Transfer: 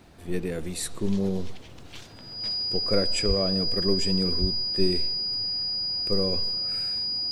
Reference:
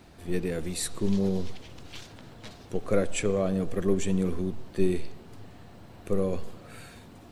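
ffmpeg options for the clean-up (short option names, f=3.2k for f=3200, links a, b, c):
-filter_complex "[0:a]bandreject=f=4.9k:w=30,asplit=3[a][b][c];[a]afade=t=out:st=3.27:d=0.02[d];[b]highpass=f=140:w=0.5412,highpass=f=140:w=1.3066,afade=t=in:st=3.27:d=0.02,afade=t=out:st=3.39:d=0.02[e];[c]afade=t=in:st=3.39:d=0.02[f];[d][e][f]amix=inputs=3:normalize=0,asplit=3[g][h][i];[g]afade=t=out:st=4.4:d=0.02[j];[h]highpass=f=140:w=0.5412,highpass=f=140:w=1.3066,afade=t=in:st=4.4:d=0.02,afade=t=out:st=4.52:d=0.02[k];[i]afade=t=in:st=4.52:d=0.02[l];[j][k][l]amix=inputs=3:normalize=0"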